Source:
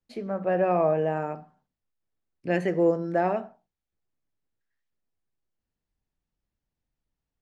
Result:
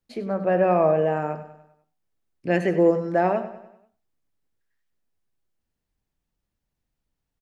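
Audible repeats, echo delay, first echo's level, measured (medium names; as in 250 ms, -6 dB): 4, 98 ms, -13.5 dB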